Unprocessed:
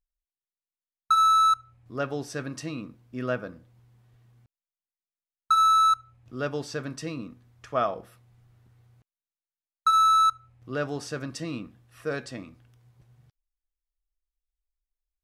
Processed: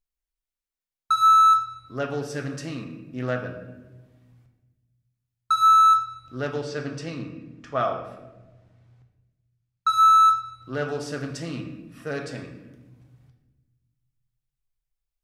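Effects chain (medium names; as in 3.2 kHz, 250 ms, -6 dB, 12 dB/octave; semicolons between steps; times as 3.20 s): 6.56–9.89 s: low-pass 6.7 kHz 12 dB/octave; reverberation RT60 1.1 s, pre-delay 7 ms, DRR 3 dB; loudspeaker Doppler distortion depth 0.15 ms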